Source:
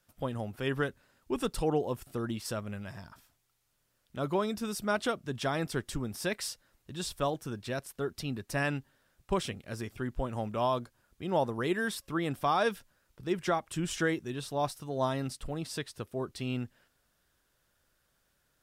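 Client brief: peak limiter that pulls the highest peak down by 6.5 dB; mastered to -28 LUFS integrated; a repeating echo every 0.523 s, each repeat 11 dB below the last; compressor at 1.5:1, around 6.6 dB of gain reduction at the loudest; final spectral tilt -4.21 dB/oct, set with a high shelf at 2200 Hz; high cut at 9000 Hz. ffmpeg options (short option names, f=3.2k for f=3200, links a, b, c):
-af "lowpass=9k,highshelf=f=2.2k:g=5,acompressor=threshold=-42dB:ratio=1.5,alimiter=level_in=4dB:limit=-24dB:level=0:latency=1,volume=-4dB,aecho=1:1:523|1046|1569:0.282|0.0789|0.0221,volume=12dB"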